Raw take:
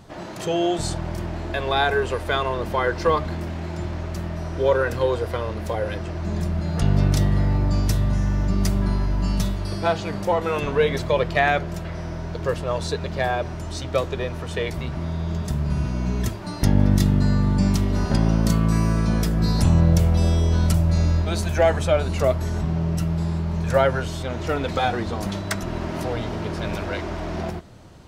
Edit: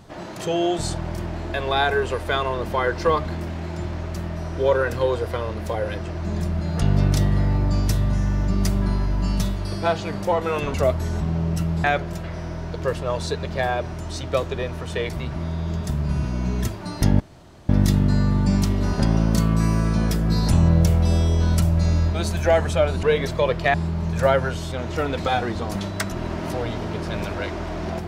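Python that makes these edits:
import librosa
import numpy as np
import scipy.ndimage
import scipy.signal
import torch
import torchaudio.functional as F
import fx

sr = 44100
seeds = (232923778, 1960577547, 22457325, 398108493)

y = fx.edit(x, sr, fx.swap(start_s=10.74, length_s=0.71, other_s=22.15, other_length_s=1.1),
    fx.insert_room_tone(at_s=16.81, length_s=0.49), tone=tone)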